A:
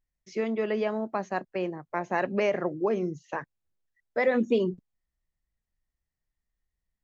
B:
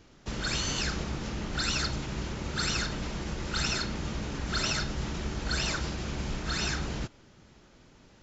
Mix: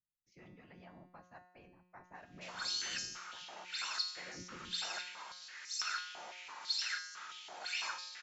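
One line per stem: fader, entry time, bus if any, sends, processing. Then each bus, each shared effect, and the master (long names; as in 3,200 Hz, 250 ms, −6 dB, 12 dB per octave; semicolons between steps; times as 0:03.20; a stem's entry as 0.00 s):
−11.0 dB, 0.00 s, no send, parametric band 420 Hz −14 dB 0.85 octaves; random phases in short frames
0.0 dB, 2.15 s, no send, high-pass on a step sequencer 6 Hz 730–5,700 Hz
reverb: not used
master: tuned comb filter 180 Hz, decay 0.83 s, harmonics all, mix 80%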